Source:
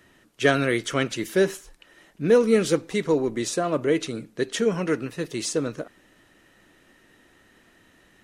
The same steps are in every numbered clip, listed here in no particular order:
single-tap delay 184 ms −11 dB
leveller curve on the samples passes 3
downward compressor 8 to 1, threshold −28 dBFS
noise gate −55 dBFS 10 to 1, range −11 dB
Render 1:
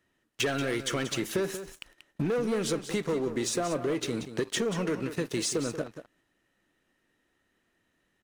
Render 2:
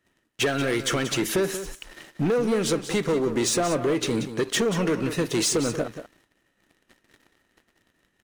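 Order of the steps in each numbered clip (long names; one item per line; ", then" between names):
leveller curve on the samples, then downward compressor, then noise gate, then single-tap delay
downward compressor, then noise gate, then leveller curve on the samples, then single-tap delay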